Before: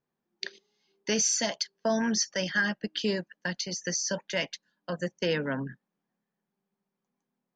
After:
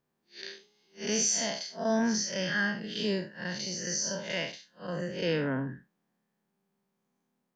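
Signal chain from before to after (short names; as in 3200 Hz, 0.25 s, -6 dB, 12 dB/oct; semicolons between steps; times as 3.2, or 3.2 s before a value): time blur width 0.134 s; in parallel at 0 dB: compressor, threshold -41 dBFS, peak gain reduction 15.5 dB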